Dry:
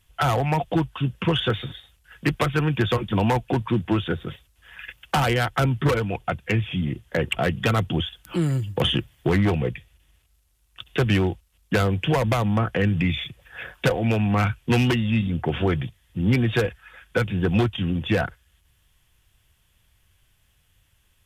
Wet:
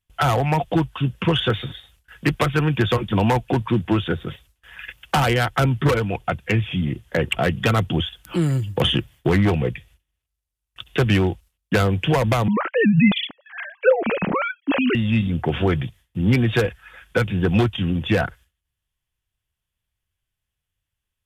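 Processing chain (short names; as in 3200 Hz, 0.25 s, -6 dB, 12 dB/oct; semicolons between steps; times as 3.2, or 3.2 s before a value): 12.48–14.95 sine-wave speech; gate with hold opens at -47 dBFS; gain +2.5 dB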